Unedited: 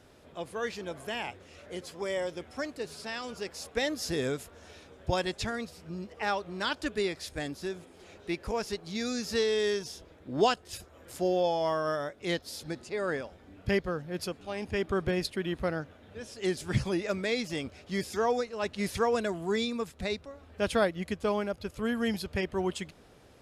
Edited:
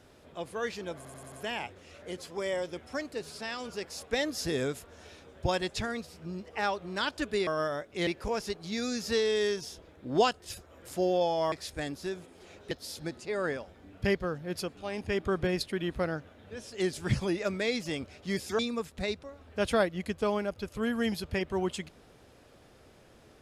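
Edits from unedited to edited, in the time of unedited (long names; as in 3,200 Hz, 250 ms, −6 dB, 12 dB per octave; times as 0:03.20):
0:00.96: stutter 0.09 s, 5 plays
0:07.11–0:08.30: swap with 0:11.75–0:12.35
0:18.23–0:19.61: remove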